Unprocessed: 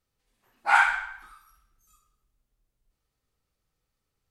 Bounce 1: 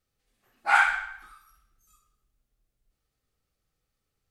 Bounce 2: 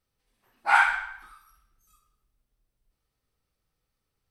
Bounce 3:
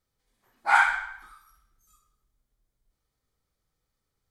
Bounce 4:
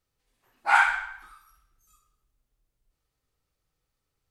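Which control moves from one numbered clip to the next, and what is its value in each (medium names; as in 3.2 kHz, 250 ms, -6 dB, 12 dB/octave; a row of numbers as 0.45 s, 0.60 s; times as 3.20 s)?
band-stop, frequency: 960 Hz, 6.9 kHz, 2.7 kHz, 210 Hz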